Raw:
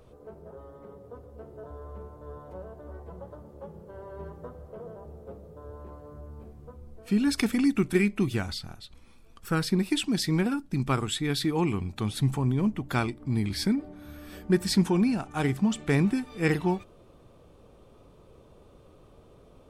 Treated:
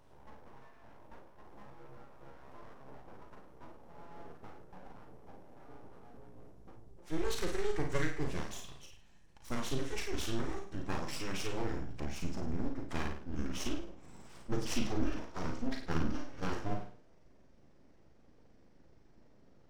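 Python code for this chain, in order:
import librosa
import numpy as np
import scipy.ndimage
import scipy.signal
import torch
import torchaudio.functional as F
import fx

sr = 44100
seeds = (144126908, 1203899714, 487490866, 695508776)

p1 = fx.pitch_glide(x, sr, semitones=-11.5, runs='starting unshifted')
p2 = p1 + fx.room_flutter(p1, sr, wall_m=9.1, rt60_s=0.48, dry=0)
p3 = np.abs(p2)
p4 = fx.peak_eq(p3, sr, hz=5600.0, db=5.0, octaves=0.24)
p5 = fx.doubler(p4, sr, ms=38.0, db=-6.0)
y = p5 * 10.0 ** (-7.5 / 20.0)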